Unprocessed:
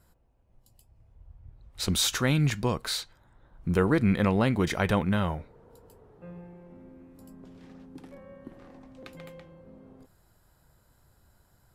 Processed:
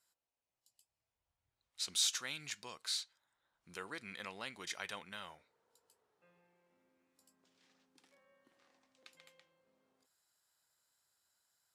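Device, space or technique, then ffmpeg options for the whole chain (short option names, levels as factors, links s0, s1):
piezo pickup straight into a mixer: -af "lowpass=6500,aderivative,volume=0.891"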